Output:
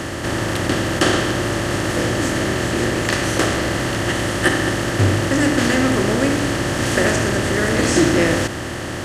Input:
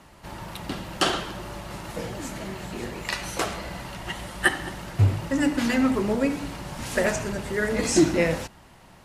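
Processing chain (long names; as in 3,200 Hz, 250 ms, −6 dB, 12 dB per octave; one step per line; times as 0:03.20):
compressor on every frequency bin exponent 0.4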